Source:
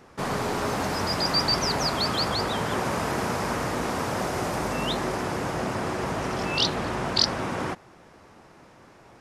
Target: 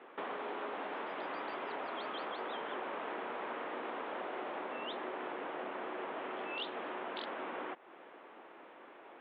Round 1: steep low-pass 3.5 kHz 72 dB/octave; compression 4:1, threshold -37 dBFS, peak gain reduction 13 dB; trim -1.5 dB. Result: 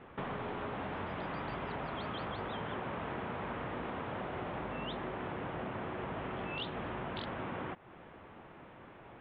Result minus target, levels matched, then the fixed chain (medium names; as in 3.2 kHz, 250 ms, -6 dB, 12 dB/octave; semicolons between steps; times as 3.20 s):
250 Hz band +4.5 dB
steep low-pass 3.5 kHz 72 dB/octave; compression 4:1, threshold -37 dBFS, peak gain reduction 13 dB; high-pass 300 Hz 24 dB/octave; trim -1.5 dB